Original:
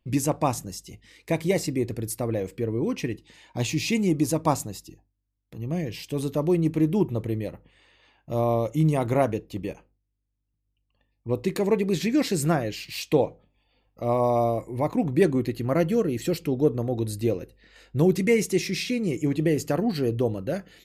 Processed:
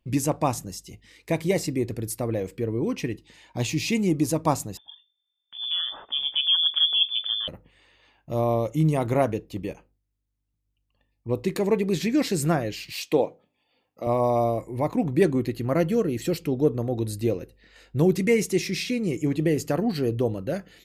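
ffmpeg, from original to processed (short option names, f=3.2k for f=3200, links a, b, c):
-filter_complex "[0:a]asettb=1/sr,asplit=3[a][b][c];[a]atrim=end=4.774[d];[b]atrim=start=4.77:end=7.48,asetpts=PTS-STARTPTS,afade=t=in:d=0.004:c=qsin,afade=t=out:st=2.706:d=0.004:c=qsin,lowpass=f=3.1k:t=q:w=0.5098,lowpass=f=3.1k:t=q:w=0.6013,lowpass=f=3.1k:t=q:w=0.9,lowpass=f=3.1k:t=q:w=2.563,afreqshift=-3600[e];[c]atrim=start=7.476[f];[d][e]acrossfade=d=0.004:c1=hsin:c2=qsin[g];[g][f]acrossfade=d=0.004:c1=qsin:c2=hsin,asettb=1/sr,asplit=3[h][i][j];[h]atrim=end=12.924[k];[i]atrim=start=12.92:end=14.07,asetpts=PTS-STARTPTS,afade=t=in:d=0.004:c=qsin,afade=t=out:st=1.146:d=0.004:c=qsin,highpass=210[l];[j]atrim=start=14.066[m];[k][l]acrossfade=d=0.004:c1=hsin:c2=qsin[n];[n][m]acrossfade=d=0.004:c1=qsin:c2=hsin"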